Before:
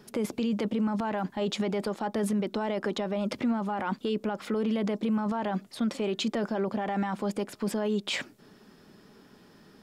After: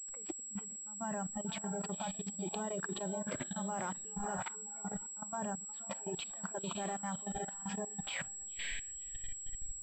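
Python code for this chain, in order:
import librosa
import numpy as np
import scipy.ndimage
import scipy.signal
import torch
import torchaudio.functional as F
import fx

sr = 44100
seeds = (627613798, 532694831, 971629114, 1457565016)

y = fx.delta_hold(x, sr, step_db=-41.0)
y = fx.low_shelf(y, sr, hz=280.0, db=4.5)
y = fx.over_compress(y, sr, threshold_db=-31.0, ratio=-0.5)
y = fx.peak_eq(y, sr, hz=69.0, db=-13.0, octaves=0.39)
y = fx.echo_diffused(y, sr, ms=537, feedback_pct=45, wet_db=-6.0)
y = fx.noise_reduce_blind(y, sr, reduce_db=18)
y = fx.level_steps(y, sr, step_db=18)
y = fx.pwm(y, sr, carrier_hz=7700.0)
y = y * 10.0 ** (-2.5 / 20.0)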